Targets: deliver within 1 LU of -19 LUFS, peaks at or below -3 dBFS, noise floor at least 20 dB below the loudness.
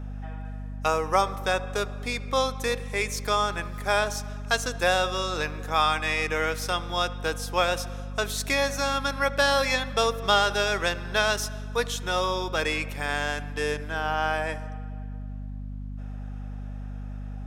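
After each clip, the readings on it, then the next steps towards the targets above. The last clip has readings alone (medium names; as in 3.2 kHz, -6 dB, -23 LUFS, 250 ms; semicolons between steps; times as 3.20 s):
hum 50 Hz; highest harmonic 250 Hz; hum level -33 dBFS; loudness -26.0 LUFS; peak level -8.0 dBFS; loudness target -19.0 LUFS
-> de-hum 50 Hz, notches 5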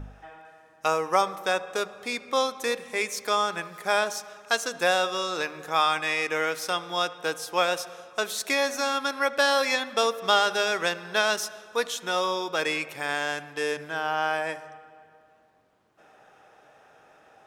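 hum not found; loudness -26.5 LUFS; peak level -8.0 dBFS; loudness target -19.0 LUFS
-> trim +7.5 dB; peak limiter -3 dBFS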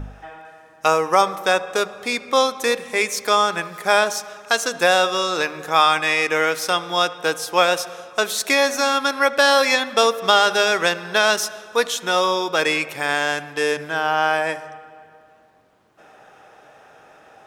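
loudness -19.0 LUFS; peak level -3.0 dBFS; noise floor -50 dBFS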